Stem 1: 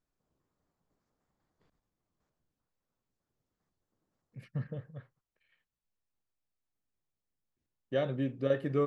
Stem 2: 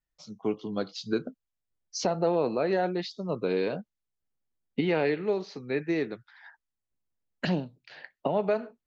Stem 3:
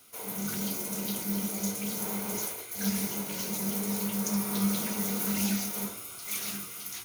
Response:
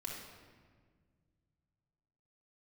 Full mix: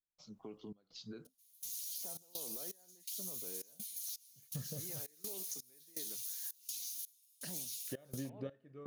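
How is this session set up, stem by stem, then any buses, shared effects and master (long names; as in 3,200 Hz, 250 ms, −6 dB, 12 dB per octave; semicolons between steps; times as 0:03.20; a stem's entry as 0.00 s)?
+1.5 dB, 0.00 s, no send, no processing
−10.0 dB, 0.00 s, no send, downward compressor, threshold −28 dBFS, peak gain reduction 7.5 dB; brickwall limiter −29.5 dBFS, peak gain reduction 11.5 dB
+1.0 dB, 1.25 s, no send, inverse Chebyshev high-pass filter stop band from 1,400 Hz, stop band 50 dB; string-ensemble chorus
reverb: not used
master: gate pattern ".xxx.xx..xxx.xx." 83 BPM −24 dB; downward compressor 6 to 1, threshold −40 dBFS, peak gain reduction 15 dB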